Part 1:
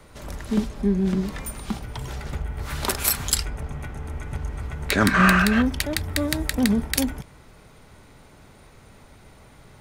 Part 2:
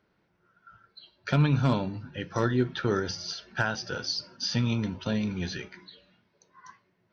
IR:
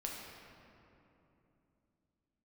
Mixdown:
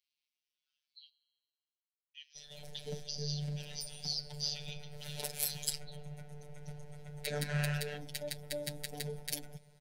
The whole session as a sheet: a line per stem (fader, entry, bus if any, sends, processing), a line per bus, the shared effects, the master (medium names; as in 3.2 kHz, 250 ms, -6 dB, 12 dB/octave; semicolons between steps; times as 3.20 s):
-12.0 dB, 2.35 s, no send, comb 6.6 ms
-3.5 dB, 0.00 s, muted 1.10–2.15 s, send -12.5 dB, steep high-pass 2.6 kHz 36 dB/octave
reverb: on, RT60 3.0 s, pre-delay 6 ms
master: robot voice 147 Hz; static phaser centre 310 Hz, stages 6